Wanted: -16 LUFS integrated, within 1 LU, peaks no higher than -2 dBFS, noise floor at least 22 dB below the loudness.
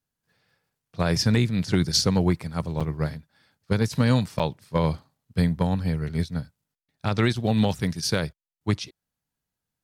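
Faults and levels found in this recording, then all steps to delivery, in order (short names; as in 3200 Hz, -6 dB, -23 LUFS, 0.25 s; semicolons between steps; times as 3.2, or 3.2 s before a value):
dropouts 2; longest dropout 5.9 ms; loudness -25.0 LUFS; peak -9.0 dBFS; loudness target -16.0 LUFS
-> interpolate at 2.8/4.39, 5.9 ms; gain +9 dB; limiter -2 dBFS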